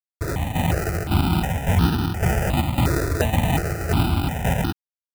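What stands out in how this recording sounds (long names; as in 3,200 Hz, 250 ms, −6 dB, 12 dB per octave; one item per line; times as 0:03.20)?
a quantiser's noise floor 6 bits, dither none
tremolo saw down 1.8 Hz, depth 65%
aliases and images of a low sample rate 1,100 Hz, jitter 0%
notches that jump at a steady rate 2.8 Hz 820–2,100 Hz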